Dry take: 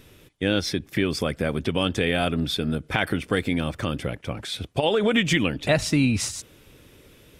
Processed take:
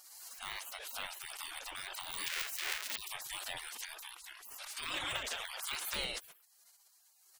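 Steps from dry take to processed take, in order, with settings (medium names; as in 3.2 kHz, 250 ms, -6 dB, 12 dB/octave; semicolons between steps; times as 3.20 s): 2.26–2.96 s: square wave that keeps the level; de-esser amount 90%; spectral gate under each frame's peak -30 dB weak; 4.30–5.94 s: bass shelf 370 Hz -6.5 dB; swell ahead of each attack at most 35 dB/s; trim +4 dB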